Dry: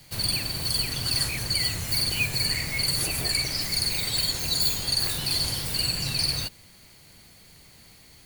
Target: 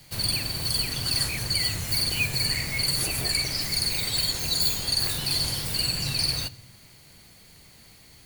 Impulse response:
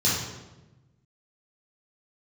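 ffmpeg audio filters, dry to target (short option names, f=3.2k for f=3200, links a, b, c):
-filter_complex "[0:a]asplit=2[a][b];[1:a]atrim=start_sample=2205,adelay=21[c];[b][c]afir=irnorm=-1:irlink=0,volume=-34dB[d];[a][d]amix=inputs=2:normalize=0"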